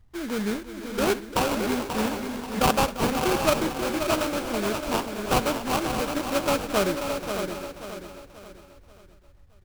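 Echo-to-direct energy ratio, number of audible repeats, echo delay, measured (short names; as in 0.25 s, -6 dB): -3.5 dB, 15, 65 ms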